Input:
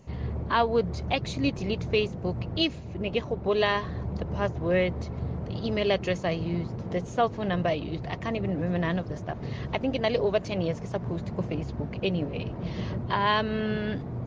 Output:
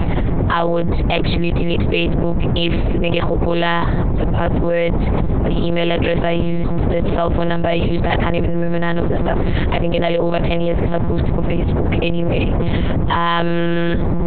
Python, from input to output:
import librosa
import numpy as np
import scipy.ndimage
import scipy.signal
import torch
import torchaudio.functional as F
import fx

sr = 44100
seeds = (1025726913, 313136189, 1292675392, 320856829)

y = fx.lpc_monotone(x, sr, seeds[0], pitch_hz=170.0, order=8)
y = fx.env_flatten(y, sr, amount_pct=100)
y = y * librosa.db_to_amplitude(4.0)